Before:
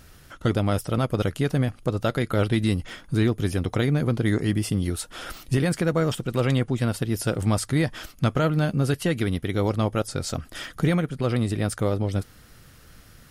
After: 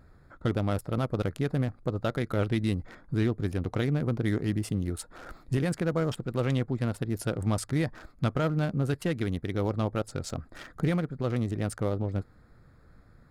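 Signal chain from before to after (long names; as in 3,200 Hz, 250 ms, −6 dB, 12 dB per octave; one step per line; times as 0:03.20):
adaptive Wiener filter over 15 samples
level −5 dB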